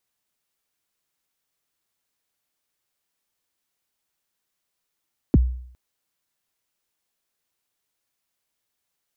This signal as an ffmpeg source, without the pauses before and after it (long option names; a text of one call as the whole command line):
ffmpeg -f lavfi -i "aevalsrc='0.355*pow(10,-3*t/0.62)*sin(2*PI*(380*0.029/log(62/380)*(exp(log(62/380)*min(t,0.029)/0.029)-1)+62*max(t-0.029,0)))':duration=0.41:sample_rate=44100" out.wav